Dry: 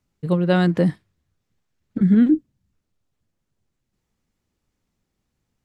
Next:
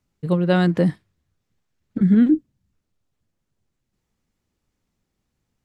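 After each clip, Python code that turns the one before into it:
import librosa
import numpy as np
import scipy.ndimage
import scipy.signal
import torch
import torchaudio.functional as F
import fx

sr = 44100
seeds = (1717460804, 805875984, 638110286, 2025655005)

y = x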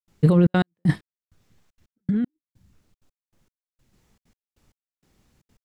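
y = fx.over_compress(x, sr, threshold_db=-23.0, ratio=-1.0)
y = fx.step_gate(y, sr, bpm=194, pattern='.xxxxx.x...xx...', floor_db=-60.0, edge_ms=4.5)
y = y * 10.0 ** (6.0 / 20.0)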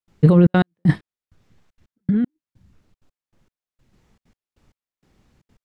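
y = fx.lowpass(x, sr, hz=3500.0, slope=6)
y = y * 10.0 ** (4.0 / 20.0)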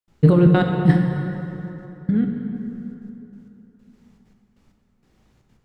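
y = fx.rev_plate(x, sr, seeds[0], rt60_s=3.4, hf_ratio=0.6, predelay_ms=0, drr_db=2.0)
y = y * 10.0 ** (-1.0 / 20.0)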